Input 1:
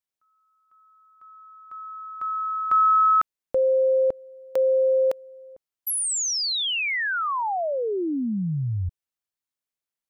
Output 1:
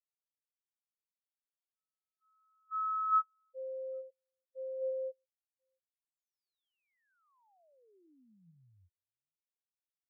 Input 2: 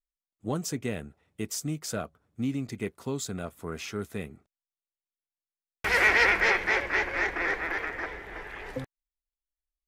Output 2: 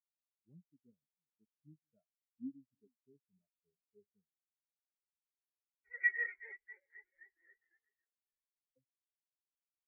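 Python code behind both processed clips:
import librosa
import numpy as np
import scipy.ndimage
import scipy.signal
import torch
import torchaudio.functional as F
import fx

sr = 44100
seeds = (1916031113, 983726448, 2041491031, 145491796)

y = fx.reverse_delay(x, sr, ms=446, wet_db=-11.0)
y = fx.spectral_expand(y, sr, expansion=4.0)
y = y * librosa.db_to_amplitude(-9.0)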